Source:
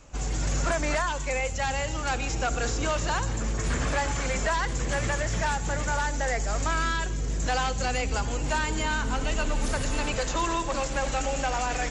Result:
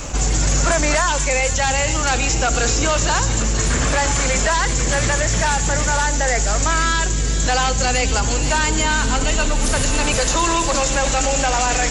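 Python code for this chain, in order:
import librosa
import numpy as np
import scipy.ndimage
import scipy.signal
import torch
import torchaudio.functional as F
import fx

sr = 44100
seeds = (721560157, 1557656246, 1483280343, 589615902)

p1 = x + fx.echo_wet_highpass(x, sr, ms=476, feedback_pct=39, hz=3100.0, wet_db=-5.5, dry=0)
p2 = fx.rider(p1, sr, range_db=10, speed_s=2.0)
p3 = fx.high_shelf(p2, sr, hz=5600.0, db=8.5)
p4 = fx.env_flatten(p3, sr, amount_pct=50)
y = p4 * 10.0 ** (6.5 / 20.0)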